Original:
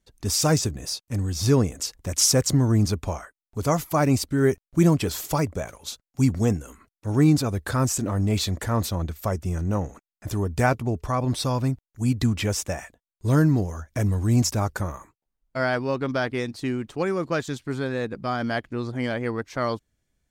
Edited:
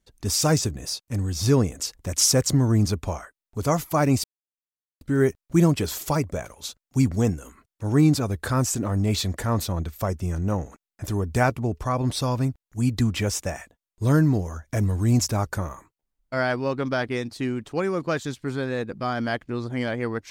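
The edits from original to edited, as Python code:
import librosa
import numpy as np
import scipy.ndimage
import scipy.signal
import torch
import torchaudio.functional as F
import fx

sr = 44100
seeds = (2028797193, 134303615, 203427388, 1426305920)

y = fx.edit(x, sr, fx.insert_silence(at_s=4.24, length_s=0.77), tone=tone)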